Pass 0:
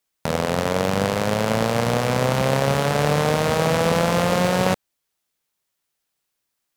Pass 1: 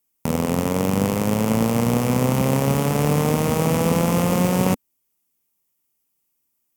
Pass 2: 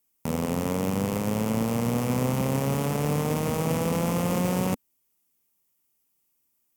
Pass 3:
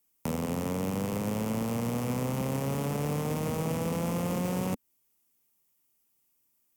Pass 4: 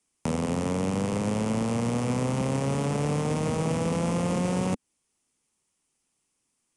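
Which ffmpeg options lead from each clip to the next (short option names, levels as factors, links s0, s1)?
-af "equalizer=f=250:t=o:w=0.67:g=6,equalizer=f=630:t=o:w=0.67:g=-7,equalizer=f=1600:t=o:w=0.67:g=-10,equalizer=f=4000:t=o:w=0.67:g=-11,equalizer=f=16000:t=o:w=0.67:g=9,volume=1.19"
-af "alimiter=limit=0.178:level=0:latency=1:release=43"
-filter_complex "[0:a]acrossover=split=240|640[s0][s1][s2];[s0]acompressor=threshold=0.0251:ratio=4[s3];[s1]acompressor=threshold=0.0178:ratio=4[s4];[s2]acompressor=threshold=0.0158:ratio=4[s5];[s3][s4][s5]amix=inputs=3:normalize=0"
-af "aresample=22050,aresample=44100,volume=1.58"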